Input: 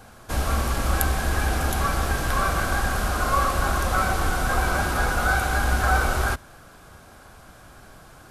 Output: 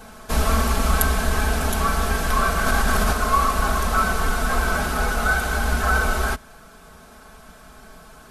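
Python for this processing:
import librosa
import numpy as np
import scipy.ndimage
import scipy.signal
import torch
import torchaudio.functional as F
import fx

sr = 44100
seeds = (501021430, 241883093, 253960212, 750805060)

y = fx.rider(x, sr, range_db=5, speed_s=2.0)
y = y + 0.75 * np.pad(y, (int(4.6 * sr / 1000.0), 0))[:len(y)]
y = fx.env_flatten(y, sr, amount_pct=100, at=(2.66, 3.13))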